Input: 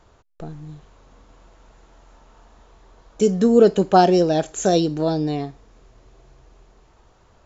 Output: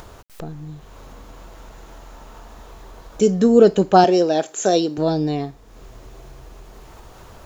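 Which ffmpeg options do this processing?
-filter_complex "[0:a]acrusher=bits=10:mix=0:aa=0.000001,acompressor=mode=upward:threshold=-32dB:ratio=2.5,asettb=1/sr,asplit=3[a][b][c];[a]atrim=end=4.044[d];[b]atrim=start=4.04:end=4.98,asetpts=PTS-STARTPTS,afade=t=in:d=0.004:c=qsin,afade=t=out:st=0.936:d=0.004:c=qsin,highpass=270[e];[c]atrim=start=4.976[f];[d][e]acrossfade=d=0.004:c1=hsin:c2=qsin[g];[g][f]acrossfade=d=0.004:c1=qsin:c2=hsin,volume=1.5dB"

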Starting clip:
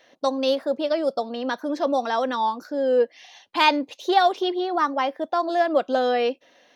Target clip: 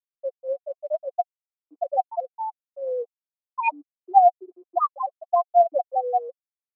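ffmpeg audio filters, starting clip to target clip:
-filter_complex "[0:a]afftfilt=real='re*gte(hypot(re,im),0.708)':imag='im*gte(hypot(re,im),0.708)':win_size=1024:overlap=0.75,asplit=3[a][b][c];[a]bandpass=f=730:t=q:w=8,volume=0dB[d];[b]bandpass=f=1.09k:t=q:w=8,volume=-6dB[e];[c]bandpass=f=2.44k:t=q:w=8,volume=-9dB[f];[d][e][f]amix=inputs=3:normalize=0,aphaser=in_gain=1:out_gain=1:delay=4.9:decay=0.31:speed=0.69:type=triangular,highpass=f=180:w=0.5412,highpass=f=180:w=1.3066,equalizer=f=330:t=q:w=4:g=-7,equalizer=f=610:t=q:w=4:g=-3,equalizer=f=990:t=q:w=4:g=4,lowpass=f=5.9k:w=0.5412,lowpass=f=5.9k:w=1.3066,volume=7.5dB"

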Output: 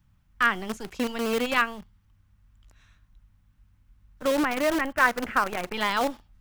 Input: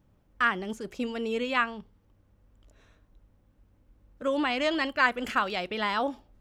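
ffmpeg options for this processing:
-filter_complex "[0:a]asettb=1/sr,asplit=3[a][b][c];[a]atrim=end=4.314[d];[b]atrim=start=4.31:end=5.74,asetpts=PTS-STARTPTS,afade=t=in:d=0.004:c=qsin,afade=t=out:st=1.426:d=0.004:c=qsin,lowpass=f=2.1k:w=0.5412,lowpass=f=2.1k:w=1.3066[e];[c]atrim=start=5.736[f];[d][e]acrossfade=d=0.004:c1=hsin:c2=qsin[g];[g][f]acrossfade=d=0.004:c1=qsin:c2=hsin,acrossover=split=210|940[h][i][j];[i]acrusher=bits=6:dc=4:mix=0:aa=0.000001[k];[h][k][j]amix=inputs=3:normalize=0,volume=3dB"

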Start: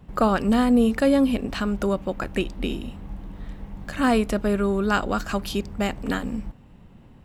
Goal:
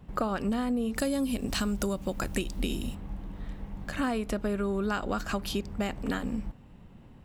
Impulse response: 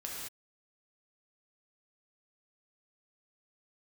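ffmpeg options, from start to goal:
-filter_complex "[0:a]asettb=1/sr,asplit=3[a][b][c];[a]atrim=end=0.954[d];[b]atrim=start=0.95:end=2.95,asetpts=PTS-STARTPTS,afade=t=in:d=0.004:c=qsin,afade=t=out:st=1.996:d=0.004:c=qsin,bass=f=250:g=4,treble=f=4k:g=14[e];[c]atrim=start=2.946[f];[d][e]acrossfade=d=0.004:c1=hsin:c2=qsin[g];[g][f]acrossfade=d=0.004:c1=qsin:c2=hsin,acompressor=threshold=-23dB:ratio=10,volume=-2.5dB"

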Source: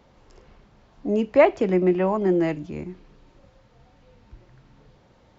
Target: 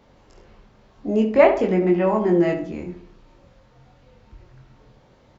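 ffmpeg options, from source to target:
-filter_complex "[0:a]asplit=2[a][b];[b]adelay=23,volume=-3dB[c];[a][c]amix=inputs=2:normalize=0,asplit=2[d][e];[e]adelay=69,lowpass=f=2k:p=1,volume=-8dB,asplit=2[f][g];[g]adelay=69,lowpass=f=2k:p=1,volume=0.45,asplit=2[h][i];[i]adelay=69,lowpass=f=2k:p=1,volume=0.45,asplit=2[j][k];[k]adelay=69,lowpass=f=2k:p=1,volume=0.45,asplit=2[l][m];[m]adelay=69,lowpass=f=2k:p=1,volume=0.45[n];[f][h][j][l][n]amix=inputs=5:normalize=0[o];[d][o]amix=inputs=2:normalize=0"

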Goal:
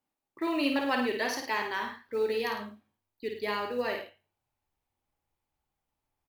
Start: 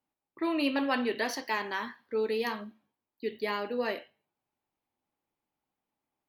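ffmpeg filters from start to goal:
-af "asubboost=boost=8:cutoff=81,acrusher=bits=8:mode=log:mix=0:aa=0.000001,aecho=1:1:53|105:0.531|0.282"

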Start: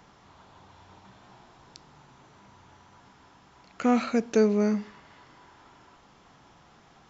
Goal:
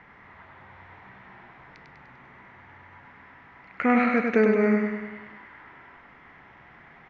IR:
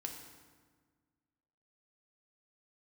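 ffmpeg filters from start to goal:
-af "lowpass=f=2k:t=q:w=5.5,aecho=1:1:99|198|297|396|495|594|693:0.631|0.347|0.191|0.105|0.0577|0.0318|0.0175"

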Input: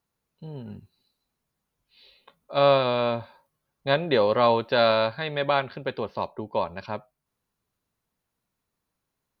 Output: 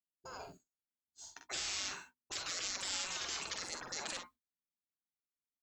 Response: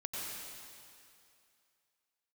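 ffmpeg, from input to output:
-filter_complex "[0:a]agate=range=-33dB:threshold=-52dB:ratio=3:detection=peak,asetrate=73647,aresample=44100,equalizer=f=125:t=o:w=1:g=-4,equalizer=f=250:t=o:w=1:g=5,equalizer=f=500:t=o:w=1:g=-8,equalizer=f=2k:t=o:w=1:g=-5,acrossover=split=390[a][b];[b]acompressor=threshold=-25dB:ratio=6[c];[a][c]amix=inputs=2:normalize=0,afftfilt=real='re*lt(hypot(re,im),0.02)':imag='im*lt(hypot(re,im),0.02)':win_size=1024:overlap=0.75,aecho=1:1:45|61:0.447|0.282,volume=5.5dB"

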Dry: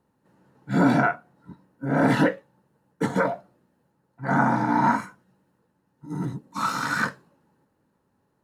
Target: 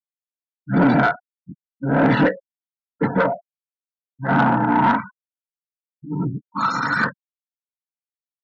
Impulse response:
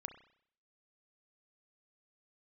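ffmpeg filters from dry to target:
-af "afftfilt=real='re*gte(hypot(re,im),0.0282)':imag='im*gte(hypot(re,im),0.0282)':win_size=1024:overlap=0.75,asoftclip=type=tanh:threshold=-15dB,volume=6dB"

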